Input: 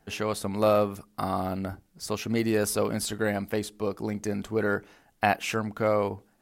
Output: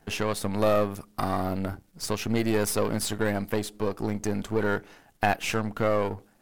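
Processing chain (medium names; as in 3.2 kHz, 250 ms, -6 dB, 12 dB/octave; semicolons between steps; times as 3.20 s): partial rectifier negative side -7 dB; in parallel at +1.5 dB: compression, threshold -34 dBFS, peak gain reduction 13 dB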